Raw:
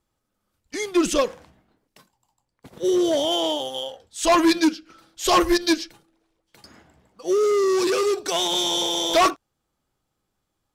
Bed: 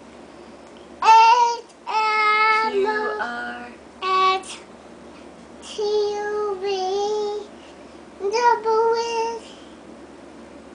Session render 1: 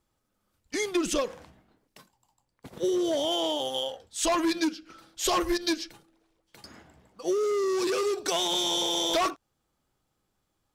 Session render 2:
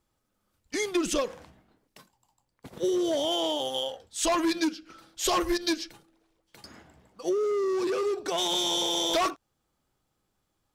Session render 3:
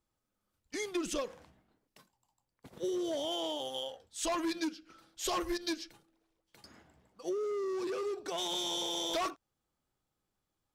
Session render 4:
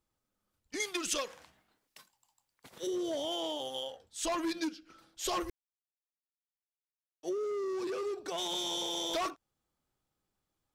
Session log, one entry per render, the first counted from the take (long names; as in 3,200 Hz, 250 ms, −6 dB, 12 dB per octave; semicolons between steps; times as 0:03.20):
downward compressor 6 to 1, threshold −24 dBFS, peak gain reduction 9 dB
0:07.29–0:08.38: high-shelf EQ 2,600 Hz −10 dB
level −8 dB
0:00.80–0:02.87: tilt shelving filter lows −7.5 dB, about 730 Hz; 0:05.50–0:07.23: silence